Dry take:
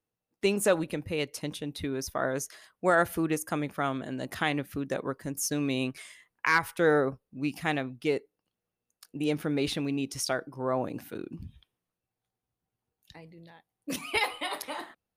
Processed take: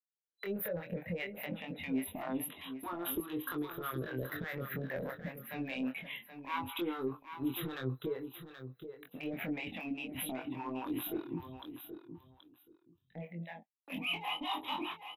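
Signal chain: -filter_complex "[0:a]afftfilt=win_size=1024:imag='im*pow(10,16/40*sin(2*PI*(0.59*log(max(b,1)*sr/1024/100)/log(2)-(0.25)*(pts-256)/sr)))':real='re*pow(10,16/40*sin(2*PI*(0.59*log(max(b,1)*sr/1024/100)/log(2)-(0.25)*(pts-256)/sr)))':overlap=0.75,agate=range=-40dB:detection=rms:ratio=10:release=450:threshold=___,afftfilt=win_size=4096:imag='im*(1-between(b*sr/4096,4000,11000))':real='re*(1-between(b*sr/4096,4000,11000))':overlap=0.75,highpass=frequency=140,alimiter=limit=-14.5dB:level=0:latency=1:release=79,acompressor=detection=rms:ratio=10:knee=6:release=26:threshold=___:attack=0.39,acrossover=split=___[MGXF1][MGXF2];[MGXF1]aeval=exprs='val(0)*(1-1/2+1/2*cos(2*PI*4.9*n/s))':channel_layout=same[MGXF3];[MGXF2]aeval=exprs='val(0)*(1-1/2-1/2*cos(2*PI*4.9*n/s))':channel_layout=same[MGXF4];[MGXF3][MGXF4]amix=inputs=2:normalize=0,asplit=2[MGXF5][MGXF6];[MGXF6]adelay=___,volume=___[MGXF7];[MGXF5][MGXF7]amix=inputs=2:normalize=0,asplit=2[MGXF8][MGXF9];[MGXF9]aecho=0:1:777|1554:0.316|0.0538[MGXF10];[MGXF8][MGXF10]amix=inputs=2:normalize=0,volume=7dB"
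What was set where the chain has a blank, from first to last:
-46dB, -37dB, 600, 23, -4dB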